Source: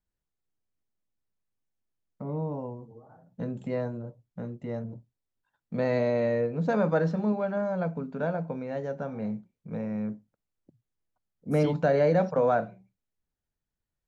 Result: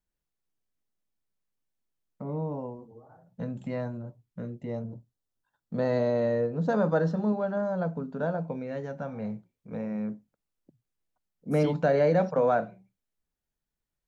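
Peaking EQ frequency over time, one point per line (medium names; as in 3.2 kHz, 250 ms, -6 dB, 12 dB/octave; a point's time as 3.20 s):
peaking EQ -13.5 dB 0.29 oct
2.65 s 92 Hz
3.58 s 430 Hz
4.08 s 430 Hz
4.95 s 2.3 kHz
8.37 s 2.3 kHz
8.93 s 450 Hz
10.02 s 96 Hz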